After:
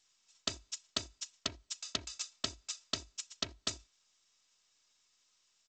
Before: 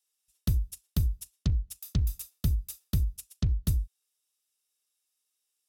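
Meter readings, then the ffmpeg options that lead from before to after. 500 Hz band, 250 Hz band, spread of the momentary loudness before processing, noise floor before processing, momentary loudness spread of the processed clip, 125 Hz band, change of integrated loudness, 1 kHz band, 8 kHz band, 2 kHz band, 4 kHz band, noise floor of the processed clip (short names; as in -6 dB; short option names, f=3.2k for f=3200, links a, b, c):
+3.0 dB, -12.5 dB, 4 LU, -81 dBFS, 6 LU, -26.0 dB, -8.0 dB, n/a, +3.5 dB, +9.0 dB, +9.5 dB, -76 dBFS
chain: -af "highpass=650,aecho=1:1:3.1:0.65,volume=8dB" -ar 16000 -c:a g722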